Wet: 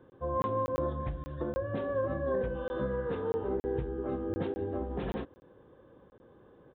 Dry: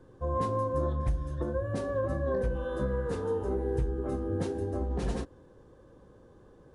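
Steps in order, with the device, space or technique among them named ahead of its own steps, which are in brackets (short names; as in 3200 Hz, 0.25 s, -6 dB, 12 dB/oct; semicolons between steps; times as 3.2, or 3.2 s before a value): call with lost packets (HPF 150 Hz 6 dB/oct; downsampling 8000 Hz; packet loss packets of 20 ms random)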